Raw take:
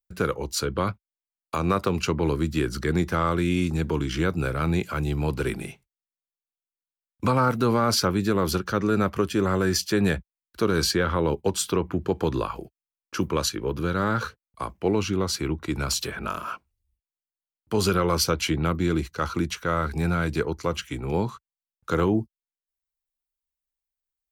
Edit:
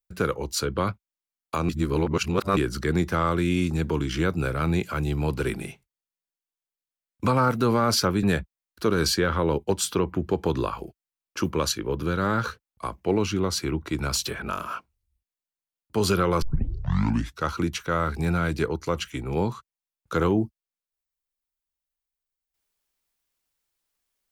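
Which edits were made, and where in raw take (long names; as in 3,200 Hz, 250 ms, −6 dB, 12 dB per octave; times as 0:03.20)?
0:01.69–0:02.57: reverse
0:08.23–0:10.00: remove
0:18.19: tape start 1.02 s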